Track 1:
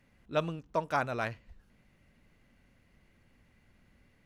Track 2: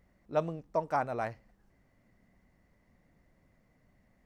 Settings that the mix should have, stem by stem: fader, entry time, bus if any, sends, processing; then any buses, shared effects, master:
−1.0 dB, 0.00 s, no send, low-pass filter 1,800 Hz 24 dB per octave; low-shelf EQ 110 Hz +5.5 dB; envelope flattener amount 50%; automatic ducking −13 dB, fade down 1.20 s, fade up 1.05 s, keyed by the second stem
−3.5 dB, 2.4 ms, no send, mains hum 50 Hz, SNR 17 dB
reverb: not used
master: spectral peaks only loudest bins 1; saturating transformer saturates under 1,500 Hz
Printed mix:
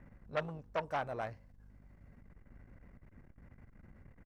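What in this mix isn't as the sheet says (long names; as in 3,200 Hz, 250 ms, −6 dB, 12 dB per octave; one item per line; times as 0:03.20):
stem 1 −1.0 dB → −11.5 dB
master: missing spectral peaks only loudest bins 1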